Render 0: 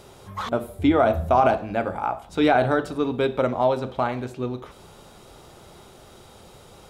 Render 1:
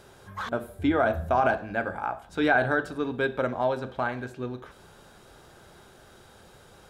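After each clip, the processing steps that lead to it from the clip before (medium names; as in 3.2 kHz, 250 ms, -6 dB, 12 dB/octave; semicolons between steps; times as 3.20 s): peaking EQ 1.6 kHz +13 dB 0.22 oct; trim -5.5 dB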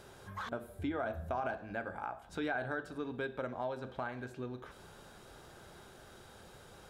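compression 2:1, threshold -40 dBFS, peak gain reduction 12.5 dB; trim -2.5 dB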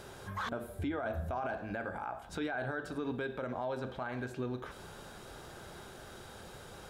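peak limiter -33.5 dBFS, peak gain reduction 9.5 dB; trim +5.5 dB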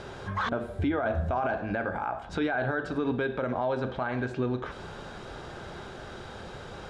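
distance through air 110 m; trim +8.5 dB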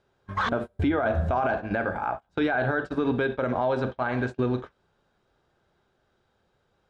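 gate -32 dBFS, range -32 dB; trim +3.5 dB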